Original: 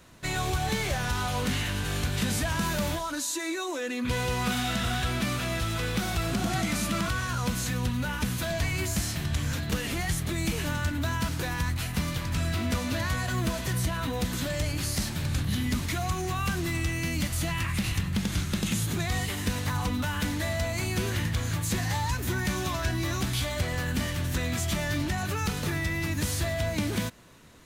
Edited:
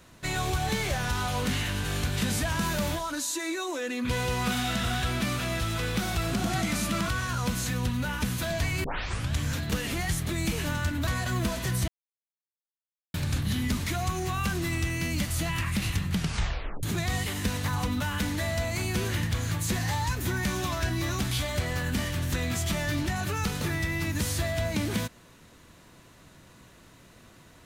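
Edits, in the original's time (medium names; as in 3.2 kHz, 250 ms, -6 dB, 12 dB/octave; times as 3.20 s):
8.84 s: tape start 0.49 s
11.07–13.09 s: delete
13.90–15.16 s: mute
18.14 s: tape stop 0.71 s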